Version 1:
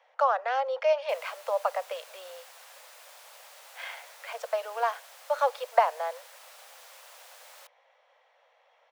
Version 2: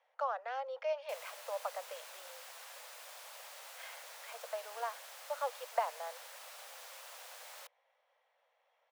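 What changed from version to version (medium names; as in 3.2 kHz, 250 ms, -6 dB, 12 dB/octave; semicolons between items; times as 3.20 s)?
speech -11.0 dB; reverb: off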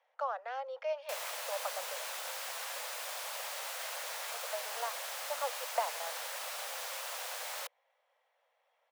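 background +10.5 dB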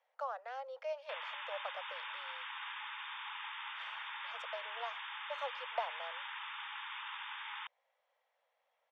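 speech -4.5 dB; background: add brick-wall FIR band-pass 810–3700 Hz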